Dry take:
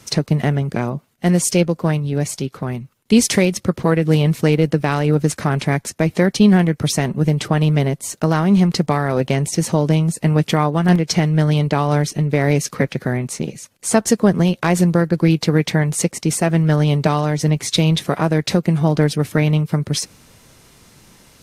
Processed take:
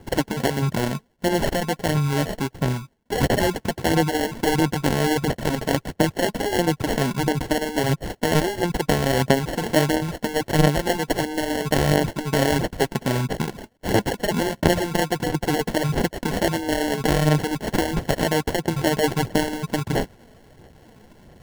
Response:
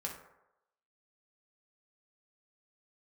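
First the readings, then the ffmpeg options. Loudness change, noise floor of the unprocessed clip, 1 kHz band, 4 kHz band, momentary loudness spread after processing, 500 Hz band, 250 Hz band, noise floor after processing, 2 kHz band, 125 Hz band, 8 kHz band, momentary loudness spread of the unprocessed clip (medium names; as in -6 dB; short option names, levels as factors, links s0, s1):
-5.5 dB, -55 dBFS, -1.0 dB, -2.0 dB, 5 LU, -2.5 dB, -6.5 dB, -57 dBFS, -0.5 dB, -8.5 dB, -7.0 dB, 7 LU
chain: -af "afftfilt=real='re*lt(hypot(re,im),1.41)':imag='im*lt(hypot(re,im),1.41)':win_size=1024:overlap=0.75,acrusher=samples=36:mix=1:aa=0.000001,aphaser=in_gain=1:out_gain=1:delay=4.7:decay=0.35:speed=1.5:type=sinusoidal,volume=0.794"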